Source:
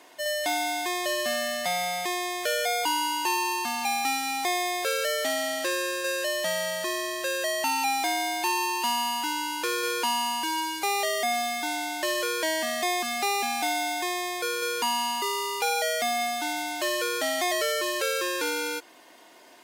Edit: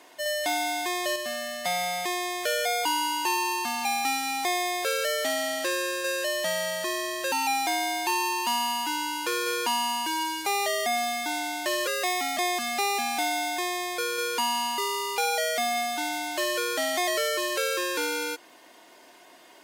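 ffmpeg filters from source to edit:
-filter_complex "[0:a]asplit=6[a][b][c][d][e][f];[a]atrim=end=1.162[g];[b]atrim=start=1.158:end=1.652,asetpts=PTS-STARTPTS,volume=-4.5dB[h];[c]atrim=start=1.648:end=7.322[i];[d]atrim=start=7.688:end=12.244[j];[e]atrim=start=12.24:end=12.81,asetpts=PTS-STARTPTS,asetrate=50274,aresample=44100,atrim=end_sample=22050,asetpts=PTS-STARTPTS[k];[f]atrim=start=12.806[l];[g][h]acrossfade=d=0.004:c1=hsin:c2=hsin[m];[m][i]acrossfade=d=0.004:c1=hsin:c2=hsin[n];[n][j]acrossfade=d=0.004:c1=hsin:c2=hsin[o];[o][k]acrossfade=d=0.004:c1=hsin:c2=hsin[p];[p][l]acrossfade=d=0.004:c1=hsin:c2=hsin"

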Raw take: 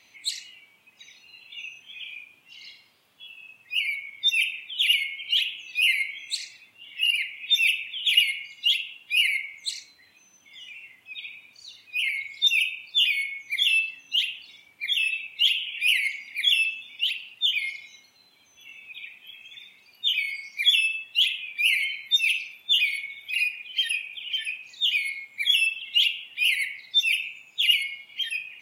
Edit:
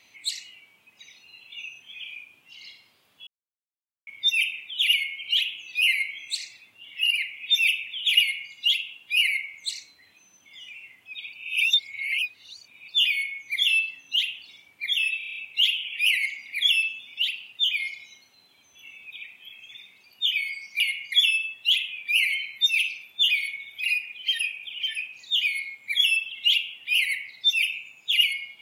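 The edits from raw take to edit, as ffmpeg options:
-filter_complex "[0:a]asplit=13[a][b][c][d][e][f][g][h][i][j][k][l][m];[a]atrim=end=3.27,asetpts=PTS-STARTPTS,afade=t=out:st=3.266:d=0.004:c=hsin[n];[b]atrim=start=3.27:end=4.07,asetpts=PTS-STARTPTS,volume=0[o];[c]atrim=start=4.07:end=11.332,asetpts=PTS-STARTPTS,afade=t=in:d=0.004:c=hsin[p];[d]atrim=start=11.328:end=12.882,asetpts=PTS-STARTPTS,areverse[q];[e]atrim=start=12.878:end=15.212[r];[f]atrim=start=15.178:end=15.212[s];[g]atrim=start=15.178:end=15.212[t];[h]atrim=start=15.178:end=15.212[u];[i]atrim=start=15.178:end=15.212[v];[j]atrim=start=15.178:end=15.212[w];[k]atrim=start=15.178:end=20.622[x];[l]atrim=start=8.198:end=8.522[y];[m]atrim=start=20.618[z];[n][o][p]concat=n=3:v=0:a=1[aa];[aa][q]acrossfade=d=0.004:c1=hsin:c2=hsin[ab];[ab][r]acrossfade=d=0.004:c1=hsin:c2=hsin[ac];[ac][s]acrossfade=d=0.004:c1=hsin:c2=hsin[ad];[ad][t]acrossfade=d=0.004:c1=hsin:c2=hsin[ae];[ae][u]acrossfade=d=0.004:c1=hsin:c2=hsin[af];[af][v]acrossfade=d=0.004:c1=hsin:c2=hsin[ag];[ag][w]acrossfade=d=0.004:c1=hsin:c2=hsin[ah];[ah][x]acrossfade=d=0.004:c1=hsin:c2=hsin[ai];[ai][y]acrossfade=d=0.004:c1=hsin:c2=hsin[aj];[aj][z]acrossfade=d=0.004:c1=hsin:c2=hsin"

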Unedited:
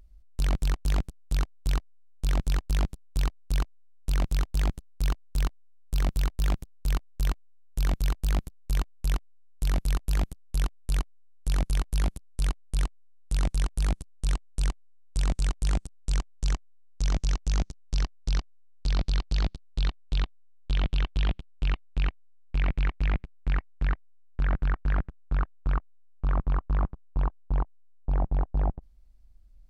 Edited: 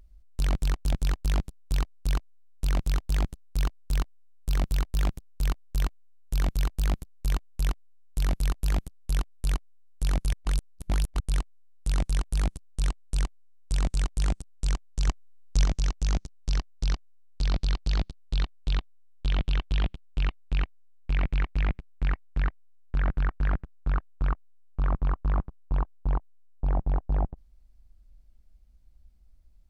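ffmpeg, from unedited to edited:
-filter_complex "[0:a]asplit=6[a][b][c][d][e][f];[a]atrim=end=0.922[g];[b]atrim=start=2.368:end=11.782[h];[c]atrim=start=11.778:end=12.652,asetpts=PTS-STARTPTS,areverse[i];[d]atrim=start=12.648:end=16.532[j];[e]atrim=start=16.528:end=17.102,asetpts=PTS-STARTPTS,volume=4.5dB[k];[f]atrim=start=17.098[l];[g][h]acrossfade=d=0.004:c1=hsin:c2=hsin[m];[m][i]acrossfade=d=0.004:c1=hsin:c2=hsin[n];[n][j]acrossfade=d=0.004:c1=hsin:c2=hsin[o];[o][k]acrossfade=d=0.004:c1=hsin:c2=hsin[p];[p][l]acrossfade=d=0.004:c1=hsin:c2=hsin"

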